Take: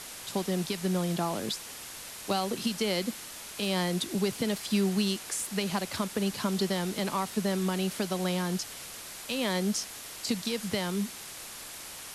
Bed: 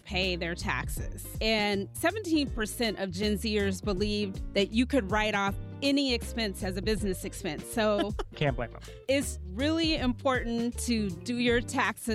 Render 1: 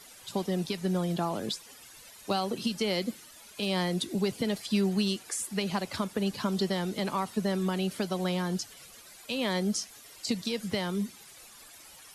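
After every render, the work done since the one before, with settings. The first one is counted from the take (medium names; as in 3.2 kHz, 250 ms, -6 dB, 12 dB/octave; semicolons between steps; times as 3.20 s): noise reduction 13 dB, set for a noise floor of -43 dBFS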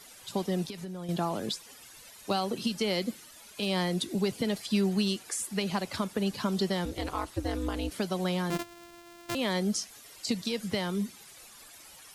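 0.64–1.09 s: compression 12:1, threshold -35 dBFS; 6.85–7.92 s: ring modulator 120 Hz; 8.50–9.35 s: sorted samples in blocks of 128 samples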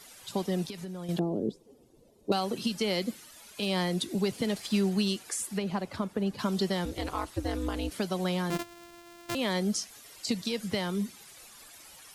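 1.19–2.32 s: FFT filter 110 Hz 0 dB, 410 Hz +8 dB, 720 Hz -7 dB, 1.6 kHz -28 dB, 3.5 kHz -23 dB; 4.33–4.90 s: CVSD coder 64 kbps; 5.58–6.39 s: treble shelf 2.1 kHz -11 dB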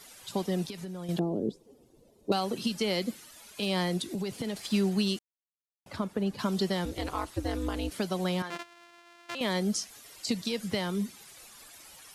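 3.97–4.67 s: compression, threshold -29 dBFS; 5.19–5.86 s: mute; 8.42–9.41 s: band-pass filter 1.9 kHz, Q 0.58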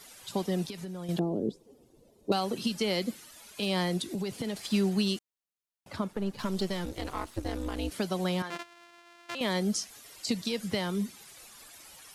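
6.11–7.79 s: partial rectifier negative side -7 dB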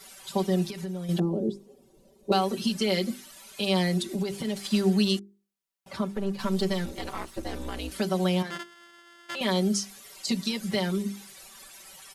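hum notches 50/100/150/200/250/300/350/400 Hz; comb 5.2 ms, depth 98%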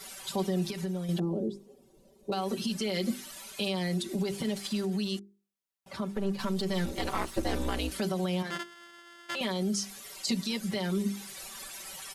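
peak limiter -21.5 dBFS, peak gain reduction 10.5 dB; gain riding within 5 dB 0.5 s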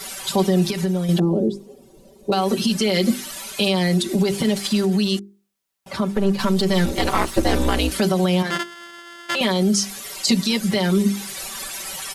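trim +12 dB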